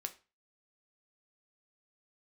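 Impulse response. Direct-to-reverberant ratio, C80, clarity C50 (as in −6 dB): 6.5 dB, 22.0 dB, 16.5 dB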